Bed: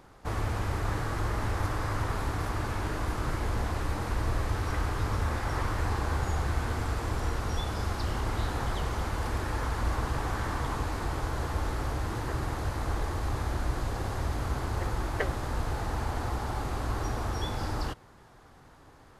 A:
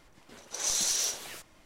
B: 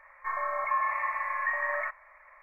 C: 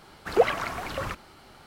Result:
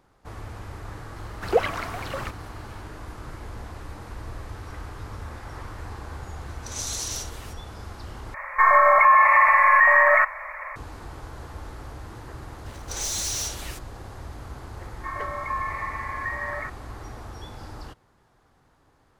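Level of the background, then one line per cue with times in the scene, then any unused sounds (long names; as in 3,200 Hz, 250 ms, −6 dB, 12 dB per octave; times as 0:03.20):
bed −7.5 dB
0:01.16: mix in C −0.5 dB
0:06.12: mix in A −3 dB
0:08.34: overwrite with B −6.5 dB + boost into a limiter +26 dB
0:12.37: mix in A −7 dB + leveller curve on the samples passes 3
0:14.79: mix in B −1 dB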